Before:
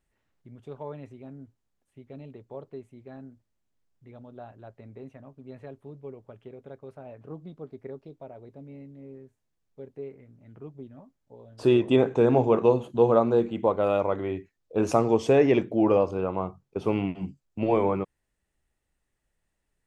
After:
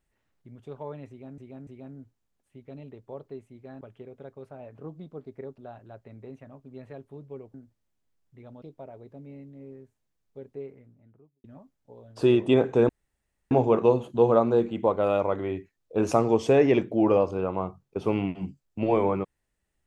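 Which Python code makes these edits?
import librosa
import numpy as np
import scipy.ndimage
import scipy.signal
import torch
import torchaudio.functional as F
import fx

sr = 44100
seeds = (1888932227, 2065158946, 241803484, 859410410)

y = fx.studio_fade_out(x, sr, start_s=10.02, length_s=0.84)
y = fx.edit(y, sr, fx.repeat(start_s=1.09, length_s=0.29, count=3),
    fx.swap(start_s=3.23, length_s=1.08, other_s=6.27, other_length_s=1.77),
    fx.insert_room_tone(at_s=12.31, length_s=0.62), tone=tone)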